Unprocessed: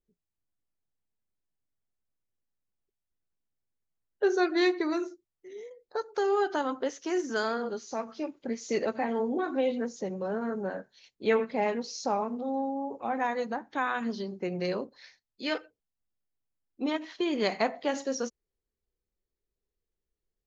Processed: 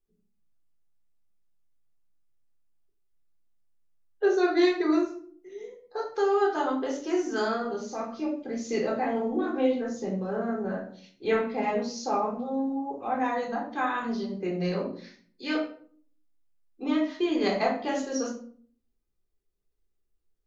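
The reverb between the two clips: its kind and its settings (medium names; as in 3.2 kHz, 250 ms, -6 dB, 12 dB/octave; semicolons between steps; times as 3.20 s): simulated room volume 490 m³, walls furnished, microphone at 3.8 m; trim -4.5 dB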